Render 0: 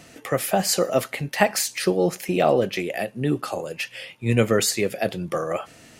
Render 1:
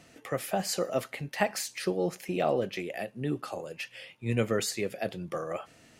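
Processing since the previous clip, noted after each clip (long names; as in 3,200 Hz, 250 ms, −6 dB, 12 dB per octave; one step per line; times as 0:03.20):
high-shelf EQ 7,900 Hz −4.5 dB
level −8.5 dB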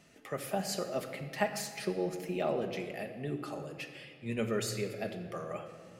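rectangular room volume 3,900 cubic metres, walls mixed, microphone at 1.3 metres
level −6 dB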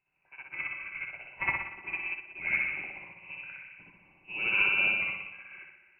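spring reverb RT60 2 s, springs 60 ms, chirp 75 ms, DRR −7 dB
voice inversion scrambler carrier 2,800 Hz
expander for the loud parts 2.5 to 1, over −37 dBFS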